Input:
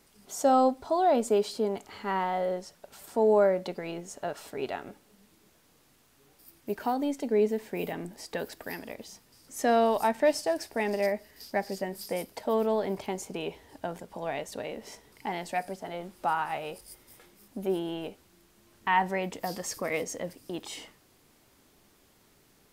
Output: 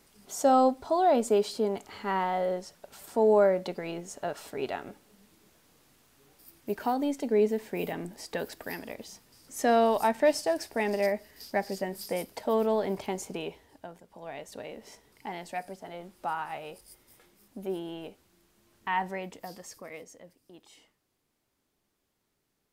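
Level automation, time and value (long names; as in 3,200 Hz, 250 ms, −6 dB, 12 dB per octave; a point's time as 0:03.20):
0:13.32 +0.5 dB
0:14.00 −11.5 dB
0:14.55 −4.5 dB
0:19.07 −4.5 dB
0:20.27 −16 dB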